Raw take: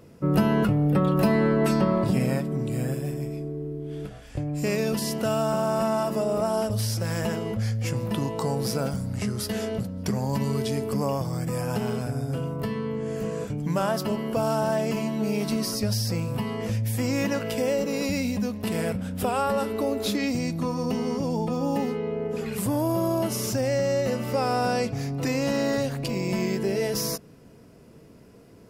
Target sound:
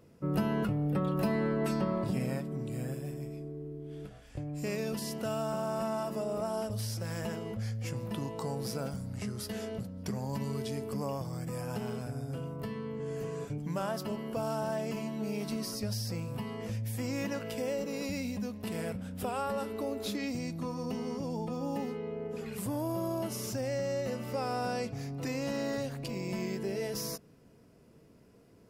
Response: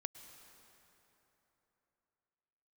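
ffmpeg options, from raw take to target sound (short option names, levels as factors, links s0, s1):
-filter_complex "[0:a]asettb=1/sr,asplit=3[s0][s1][s2];[s0]atrim=end=12.994[s3];[s1]atrim=start=12.99:end=13.58,asetpts=PTS-STARTPTS,afade=t=in:d=0.004:c=qsin,afade=t=out:st=0.586:d=0.004:c=qsin,aecho=1:1:7.1:0.61,atrim=end_sample=26019[s4];[s2]atrim=start=13.576[s5];[s3][s4]acrossfade=d=0.004:c1=hsin:c2=qsin[s6];[s6][s5]acrossfade=d=0.004:c1=qsin:c2=hsin,volume=0.355"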